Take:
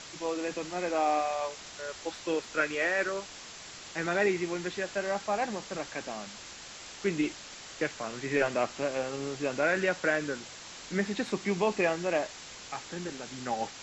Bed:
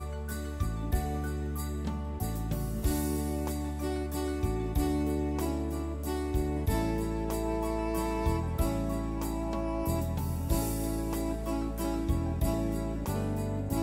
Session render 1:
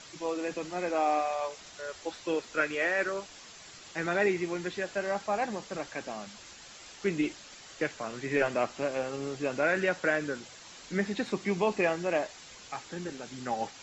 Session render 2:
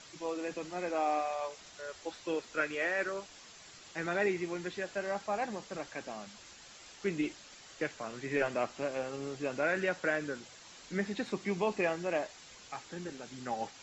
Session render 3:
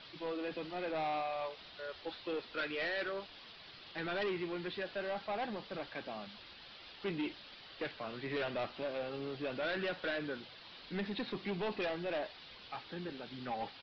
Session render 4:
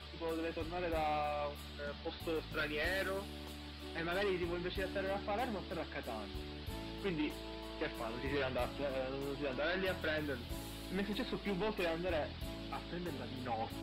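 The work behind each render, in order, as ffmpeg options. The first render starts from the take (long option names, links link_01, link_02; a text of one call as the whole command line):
ffmpeg -i in.wav -af "afftdn=noise_reduction=6:noise_floor=-46" out.wav
ffmpeg -i in.wav -af "volume=-4dB" out.wav
ffmpeg -i in.wav -af "aresample=11025,asoftclip=type=tanh:threshold=-32.5dB,aresample=44100,aexciter=amount=1.6:drive=3.3:freq=2900" out.wav
ffmpeg -i in.wav -i bed.wav -filter_complex "[1:a]volume=-16dB[link_01];[0:a][link_01]amix=inputs=2:normalize=0" out.wav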